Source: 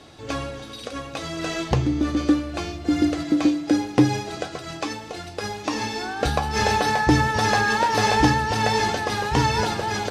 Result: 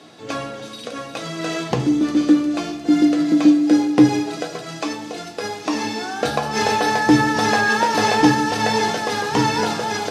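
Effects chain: high-pass 130 Hz 24 dB/octave; feedback echo behind a high-pass 355 ms, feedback 63%, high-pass 5.1 kHz, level -6 dB; on a send at -7 dB: reverberation RT60 0.70 s, pre-delay 3 ms; on the sum: trim +1.5 dB

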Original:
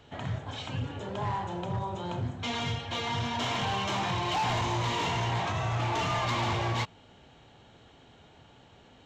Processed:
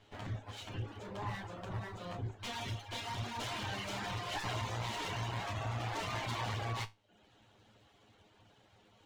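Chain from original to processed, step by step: comb filter that takes the minimum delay 9.7 ms; reverb removal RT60 0.61 s; feedback comb 54 Hz, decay 0.22 s, harmonics all, mix 60%; trim -2.5 dB

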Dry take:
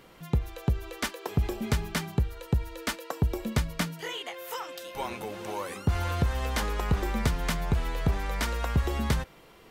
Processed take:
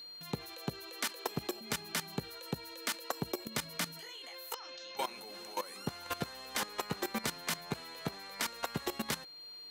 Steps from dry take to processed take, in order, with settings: Chebyshev high-pass 200 Hz, order 2; tilt EQ +2 dB/octave; 4.54–4.97 s: elliptic low-pass 6.5 kHz, stop band 40 dB; level held to a coarse grid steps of 17 dB; whistle 4.2 kHz -50 dBFS; tape noise reduction on one side only encoder only; trim +1 dB

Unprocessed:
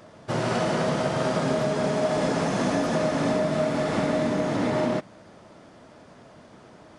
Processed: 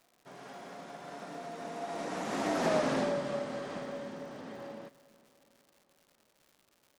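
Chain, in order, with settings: Doppler pass-by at 2.76 s, 36 m/s, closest 10 m; peaking EQ 86 Hz -12.5 dB 1.9 oct; crackle 240 per s -49 dBFS; on a send: feedback delay 366 ms, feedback 55%, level -21.5 dB; on the sum: loudspeaker Doppler distortion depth 0.2 ms; trim -2.5 dB

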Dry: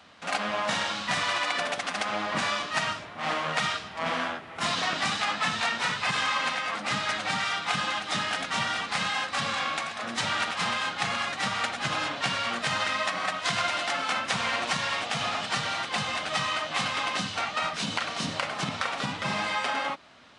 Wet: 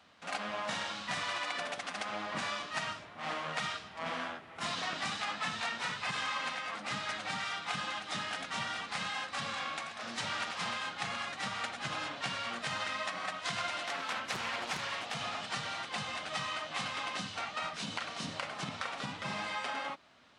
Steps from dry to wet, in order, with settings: 9.98–10.77 s: band noise 450–5400 Hz -40 dBFS; 13.83–15.15 s: loudspeaker Doppler distortion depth 0.93 ms; trim -8.5 dB

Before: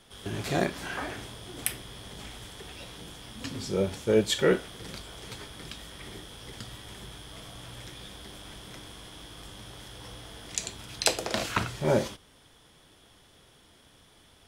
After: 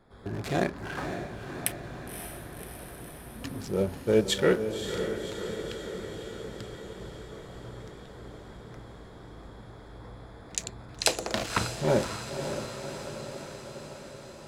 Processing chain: local Wiener filter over 15 samples; echo that smears into a reverb 557 ms, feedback 68%, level -8 dB

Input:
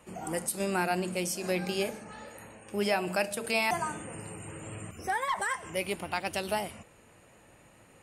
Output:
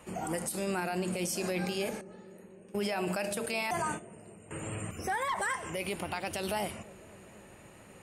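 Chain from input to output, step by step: 2.01–4.51 s: gate -37 dBFS, range -17 dB; peak limiter -27.5 dBFS, peak gain reduction 11.5 dB; bucket-brigade echo 252 ms, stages 1024, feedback 81%, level -19 dB; trim +3.5 dB

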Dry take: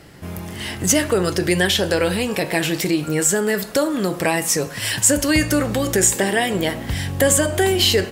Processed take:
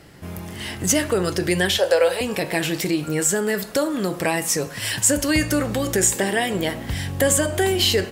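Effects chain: 1.78–2.21 s: resonant low shelf 360 Hz -14 dB, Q 3; trim -2.5 dB

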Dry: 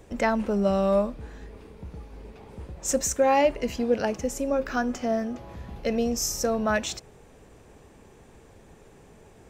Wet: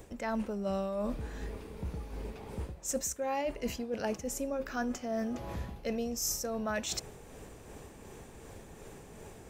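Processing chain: treble shelf 8.6 kHz +9 dB; reverse; compression 5:1, threshold -35 dBFS, peak gain reduction 16.5 dB; reverse; tremolo 2.7 Hz, depth 32%; trim +3.5 dB

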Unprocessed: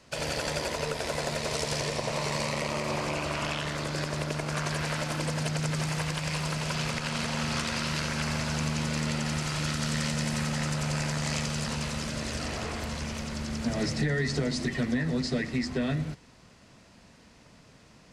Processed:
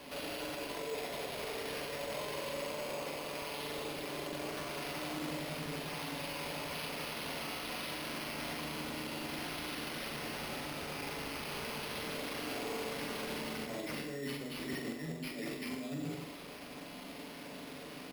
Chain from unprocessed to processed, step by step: high-pass 210 Hz 24 dB/octave; peaking EQ 1.5 kHz -9.5 dB 1.3 oct; band-stop 1.6 kHz; comb 7 ms, depth 57%; compressor with a negative ratio -37 dBFS, ratio -0.5; peak limiter -38 dBFS, peak gain reduction 18 dB; flutter echo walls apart 7.3 m, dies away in 0.52 s; on a send at -8 dB: reverberation, pre-delay 3 ms; on the sum: careless resampling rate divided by 6×, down none, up hold; trim +5 dB

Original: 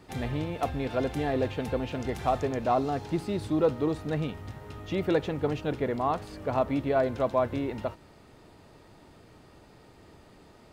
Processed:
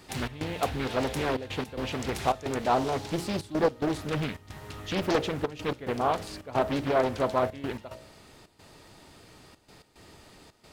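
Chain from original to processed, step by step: treble shelf 2.4 kHz +11.5 dB; de-hum 58.45 Hz, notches 11; trance gate "xx.xxxxxxx.x.xx" 110 bpm -12 dB; loudspeaker Doppler distortion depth 0.75 ms

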